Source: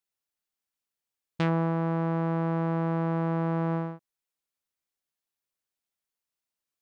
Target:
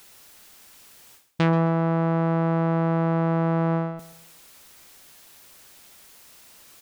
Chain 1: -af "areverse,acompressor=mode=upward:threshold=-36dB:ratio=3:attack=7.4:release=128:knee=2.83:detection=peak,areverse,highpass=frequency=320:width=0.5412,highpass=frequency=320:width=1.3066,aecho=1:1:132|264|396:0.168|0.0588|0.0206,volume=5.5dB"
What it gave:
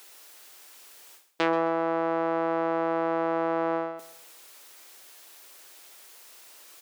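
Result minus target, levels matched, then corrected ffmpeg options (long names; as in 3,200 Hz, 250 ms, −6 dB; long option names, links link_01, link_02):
250 Hz band −3.0 dB
-af "areverse,acompressor=mode=upward:threshold=-36dB:ratio=3:attack=7.4:release=128:knee=2.83:detection=peak,areverse,aecho=1:1:132|264|396:0.168|0.0588|0.0206,volume=5.5dB"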